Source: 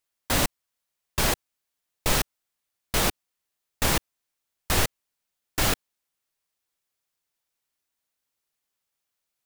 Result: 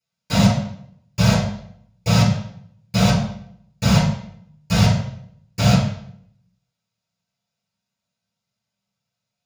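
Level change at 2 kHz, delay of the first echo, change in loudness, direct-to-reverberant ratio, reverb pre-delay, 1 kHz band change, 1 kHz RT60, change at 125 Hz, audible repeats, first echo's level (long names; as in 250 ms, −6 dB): +2.0 dB, no echo audible, +7.0 dB, −13.0 dB, 3 ms, +4.5 dB, 0.65 s, +17.0 dB, no echo audible, no echo audible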